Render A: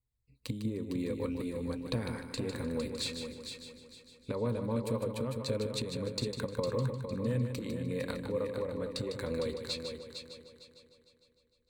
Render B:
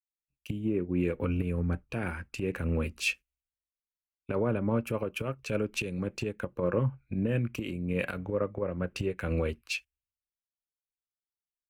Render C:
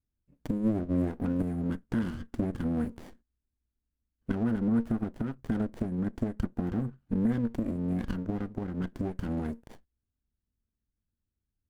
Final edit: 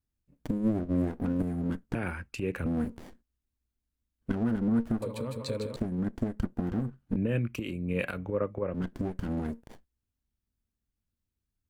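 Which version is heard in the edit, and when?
C
1.95–2.66 s: from B
5.02–5.76 s: from A
7.16–8.74 s: from B

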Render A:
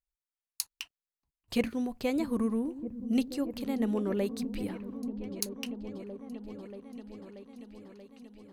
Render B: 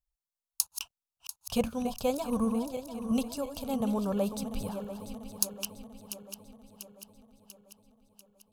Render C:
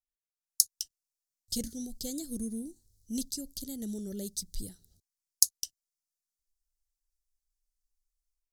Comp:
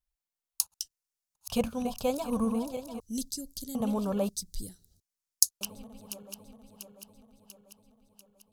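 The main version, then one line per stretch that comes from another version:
B
0.74–1.35 s: from C
3.00–3.75 s: from C
4.29–5.61 s: from C
not used: A

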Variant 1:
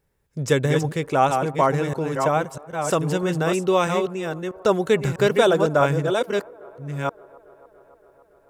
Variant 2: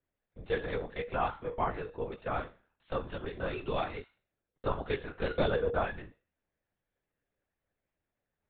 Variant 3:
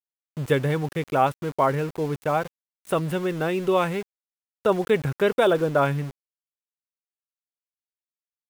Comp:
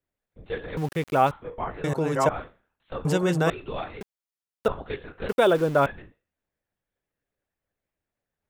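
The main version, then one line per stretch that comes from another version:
2
0.77–1.31 s: from 3
1.84–2.29 s: from 1
3.05–3.50 s: from 1
4.01–4.68 s: from 3
5.29–5.86 s: from 3

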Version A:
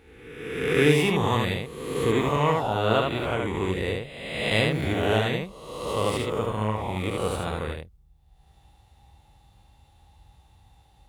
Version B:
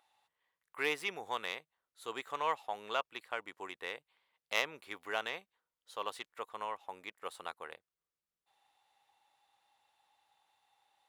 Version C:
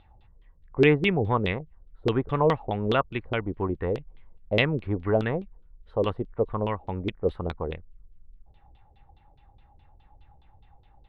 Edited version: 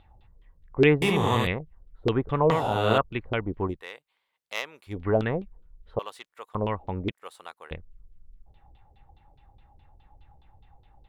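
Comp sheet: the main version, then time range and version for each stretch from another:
C
1.02–1.47 s: from A
2.51–2.98 s: from A
3.74–4.94 s: from B, crossfade 0.16 s
5.99–6.55 s: from B
7.11–7.71 s: from B

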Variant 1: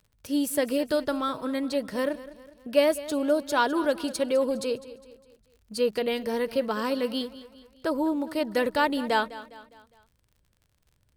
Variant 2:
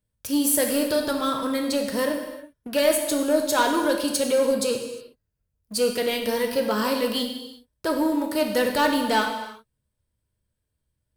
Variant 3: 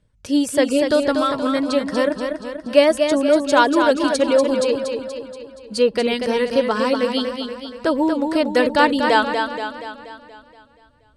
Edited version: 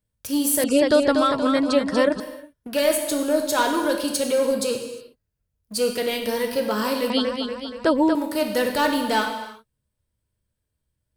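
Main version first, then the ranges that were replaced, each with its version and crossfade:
2
0.64–2.20 s: from 3
7.10–8.15 s: from 3
not used: 1

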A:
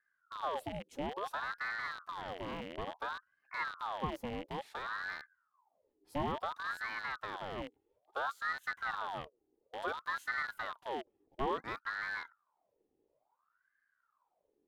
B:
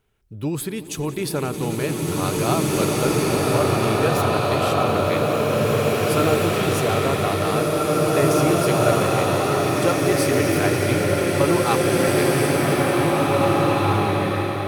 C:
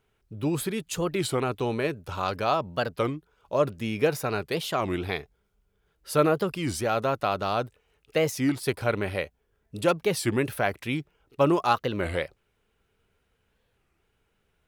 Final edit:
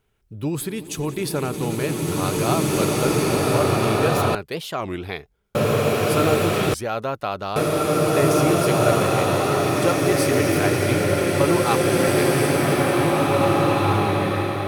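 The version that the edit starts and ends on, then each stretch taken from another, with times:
B
4.35–5.55 s: from C
6.74–7.56 s: from C
not used: A

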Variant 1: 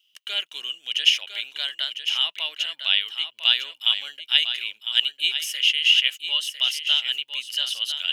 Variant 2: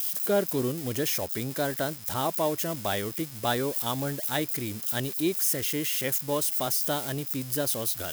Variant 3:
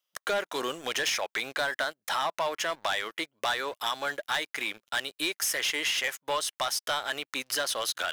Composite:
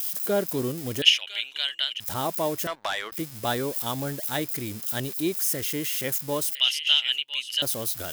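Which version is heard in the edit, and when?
2
1.02–2.00 s: from 1
2.67–3.12 s: from 3
6.55–7.62 s: from 1

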